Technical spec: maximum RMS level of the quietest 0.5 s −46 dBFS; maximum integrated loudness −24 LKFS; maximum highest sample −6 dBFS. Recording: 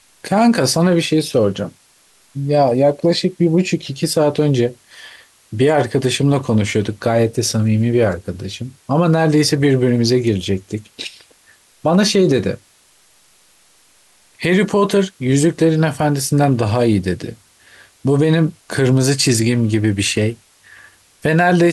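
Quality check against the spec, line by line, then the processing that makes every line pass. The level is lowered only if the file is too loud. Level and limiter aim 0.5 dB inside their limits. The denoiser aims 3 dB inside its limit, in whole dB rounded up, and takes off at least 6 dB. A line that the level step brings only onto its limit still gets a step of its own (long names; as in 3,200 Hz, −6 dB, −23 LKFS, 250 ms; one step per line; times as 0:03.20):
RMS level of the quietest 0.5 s −53 dBFS: in spec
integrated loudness −16.0 LKFS: out of spec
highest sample −5.0 dBFS: out of spec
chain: level −8.5 dB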